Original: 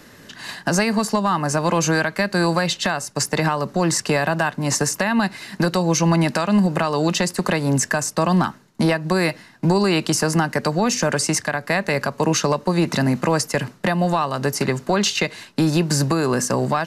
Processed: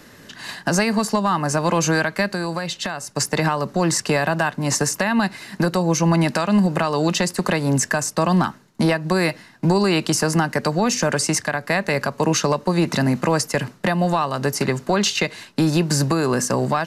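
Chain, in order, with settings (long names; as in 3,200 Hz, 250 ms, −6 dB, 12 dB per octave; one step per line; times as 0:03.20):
0:02.27–0:03.09: downward compressor 2.5 to 1, threshold −25 dBFS, peak gain reduction 7 dB
0:05.32–0:06.14: dynamic equaliser 3,700 Hz, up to −4 dB, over −38 dBFS, Q 0.76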